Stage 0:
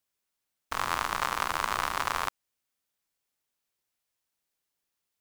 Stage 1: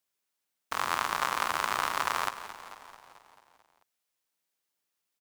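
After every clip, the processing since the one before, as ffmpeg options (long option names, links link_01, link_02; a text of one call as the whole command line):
ffmpeg -i in.wav -filter_complex "[0:a]highpass=frequency=180:poles=1,asplit=2[link_01][link_02];[link_02]asplit=7[link_03][link_04][link_05][link_06][link_07][link_08][link_09];[link_03]adelay=220,afreqshift=-30,volume=-13dB[link_10];[link_04]adelay=440,afreqshift=-60,volume=-17.3dB[link_11];[link_05]adelay=660,afreqshift=-90,volume=-21.6dB[link_12];[link_06]adelay=880,afreqshift=-120,volume=-25.9dB[link_13];[link_07]adelay=1100,afreqshift=-150,volume=-30.2dB[link_14];[link_08]adelay=1320,afreqshift=-180,volume=-34.5dB[link_15];[link_09]adelay=1540,afreqshift=-210,volume=-38.8dB[link_16];[link_10][link_11][link_12][link_13][link_14][link_15][link_16]amix=inputs=7:normalize=0[link_17];[link_01][link_17]amix=inputs=2:normalize=0" out.wav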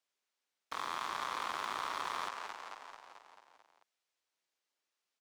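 ffmpeg -i in.wav -filter_complex "[0:a]acrossover=split=260 7600:gain=0.224 1 0.158[link_01][link_02][link_03];[link_01][link_02][link_03]amix=inputs=3:normalize=0,asplit=2[link_04][link_05];[link_05]alimiter=limit=-23.5dB:level=0:latency=1,volume=-2.5dB[link_06];[link_04][link_06]amix=inputs=2:normalize=0,asoftclip=type=tanh:threshold=-24dB,volume=-5.5dB" out.wav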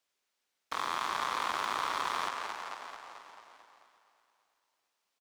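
ffmpeg -i in.wav -af "aecho=1:1:339|678|1017|1356|1695:0.2|0.104|0.054|0.0281|0.0146,volume=5dB" out.wav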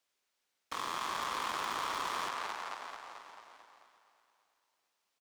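ffmpeg -i in.wav -af "asoftclip=type=hard:threshold=-31dB" out.wav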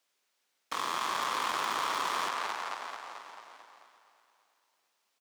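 ffmpeg -i in.wav -af "highpass=frequency=180:poles=1,volume=4.5dB" out.wav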